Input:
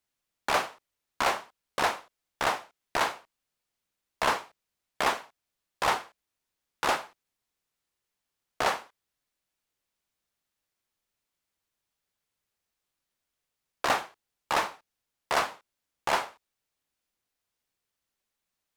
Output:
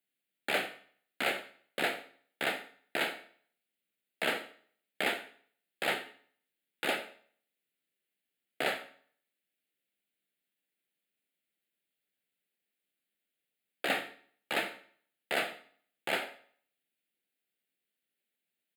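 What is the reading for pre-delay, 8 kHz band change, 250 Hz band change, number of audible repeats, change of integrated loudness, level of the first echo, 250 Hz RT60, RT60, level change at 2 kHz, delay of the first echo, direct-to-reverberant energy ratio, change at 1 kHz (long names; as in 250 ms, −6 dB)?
14 ms, −8.5 dB, −0.5 dB, 1, −4.5 dB, −18.5 dB, 0.55 s, 0.50 s, −2.0 dB, 88 ms, 9.5 dB, −11.0 dB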